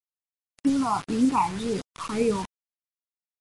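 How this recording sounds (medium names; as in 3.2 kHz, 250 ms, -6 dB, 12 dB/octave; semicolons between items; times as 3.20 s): phasing stages 8, 1.9 Hz, lowest notch 460–1100 Hz; tremolo saw up 7.2 Hz, depth 35%; a quantiser's noise floor 6-bit, dither none; MP3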